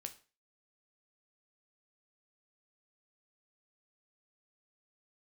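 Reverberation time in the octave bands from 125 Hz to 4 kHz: 0.35, 0.35, 0.35, 0.35, 0.35, 0.35 s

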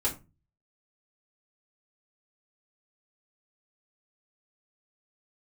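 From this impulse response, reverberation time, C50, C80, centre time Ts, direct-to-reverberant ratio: 0.30 s, 13.0 dB, 19.0 dB, 16 ms, -5.0 dB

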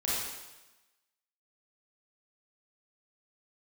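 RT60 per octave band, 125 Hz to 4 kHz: 1.0, 1.0, 1.1, 1.1, 1.1, 1.1 s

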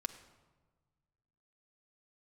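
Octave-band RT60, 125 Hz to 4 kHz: 2.2, 1.7, 1.4, 1.3, 0.95, 0.80 s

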